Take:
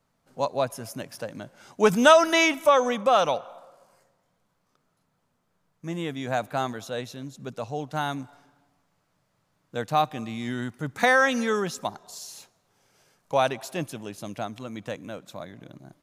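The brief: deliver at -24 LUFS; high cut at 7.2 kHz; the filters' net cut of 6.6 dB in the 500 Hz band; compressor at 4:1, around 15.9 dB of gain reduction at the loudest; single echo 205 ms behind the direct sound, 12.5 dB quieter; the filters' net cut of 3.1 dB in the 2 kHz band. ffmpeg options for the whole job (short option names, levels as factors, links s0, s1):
-af "lowpass=7200,equalizer=f=500:t=o:g=-8.5,equalizer=f=2000:t=o:g=-3.5,acompressor=threshold=0.02:ratio=4,aecho=1:1:205:0.237,volume=5.31"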